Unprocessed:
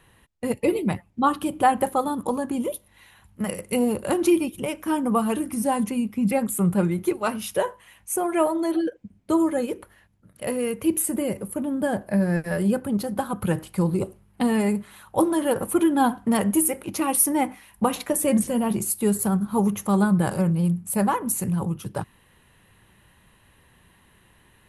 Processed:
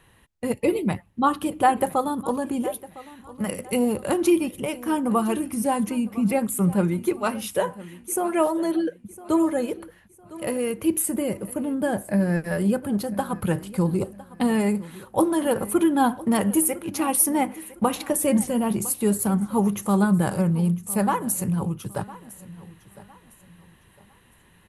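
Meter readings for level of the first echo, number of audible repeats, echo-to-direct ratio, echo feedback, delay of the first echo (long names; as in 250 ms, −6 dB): −18.5 dB, 2, −18.0 dB, 32%, 1,007 ms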